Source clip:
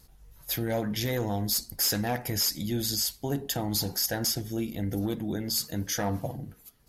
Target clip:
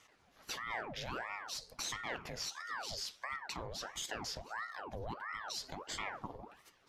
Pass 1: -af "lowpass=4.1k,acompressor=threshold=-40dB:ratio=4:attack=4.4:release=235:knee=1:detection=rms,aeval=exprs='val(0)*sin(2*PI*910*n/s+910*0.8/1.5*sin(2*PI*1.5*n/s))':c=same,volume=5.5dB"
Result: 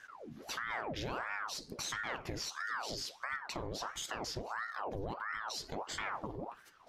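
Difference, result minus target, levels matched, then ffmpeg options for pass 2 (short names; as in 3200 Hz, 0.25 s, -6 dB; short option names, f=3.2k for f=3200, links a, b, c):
250 Hz band +3.5 dB
-af "lowpass=4.1k,acompressor=threshold=-40dB:ratio=4:attack=4.4:release=235:knee=1:detection=rms,highpass=f=240:w=0.5412,highpass=f=240:w=1.3066,aeval=exprs='val(0)*sin(2*PI*910*n/s+910*0.8/1.5*sin(2*PI*1.5*n/s))':c=same,volume=5.5dB"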